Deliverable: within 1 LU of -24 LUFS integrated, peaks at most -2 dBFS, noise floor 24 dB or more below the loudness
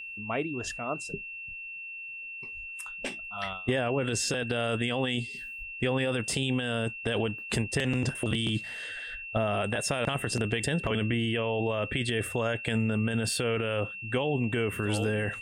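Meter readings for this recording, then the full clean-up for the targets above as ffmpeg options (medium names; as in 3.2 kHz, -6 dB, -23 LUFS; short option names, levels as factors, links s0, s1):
steady tone 2.7 kHz; tone level -38 dBFS; loudness -30.0 LUFS; peak level -16.0 dBFS; loudness target -24.0 LUFS
-> -af "bandreject=f=2700:w=30"
-af "volume=2"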